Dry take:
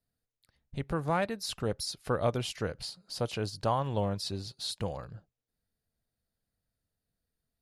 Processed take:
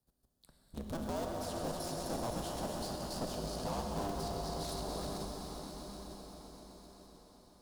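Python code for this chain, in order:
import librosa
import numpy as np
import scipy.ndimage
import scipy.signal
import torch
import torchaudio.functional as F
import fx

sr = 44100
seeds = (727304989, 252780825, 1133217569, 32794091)

p1 = fx.cycle_switch(x, sr, every=2, mode='inverted')
p2 = p1 + fx.echo_heads(p1, sr, ms=129, heads='first and second', feedback_pct=71, wet_db=-12.5, dry=0)
p3 = fx.dynamic_eq(p2, sr, hz=630.0, q=2.1, threshold_db=-46.0, ratio=4.0, max_db=5)
p4 = fx.level_steps(p3, sr, step_db=14)
p5 = fx.tube_stage(p4, sr, drive_db=39.0, bias=0.6)
p6 = fx.peak_eq(p5, sr, hz=2200.0, db=-14.0, octaves=1.1)
p7 = fx.rev_plate(p6, sr, seeds[0], rt60_s=4.4, hf_ratio=1.0, predelay_ms=0, drr_db=1.0)
p8 = fx.band_squash(p7, sr, depth_pct=40)
y = F.gain(torch.from_numpy(p8), 4.5).numpy()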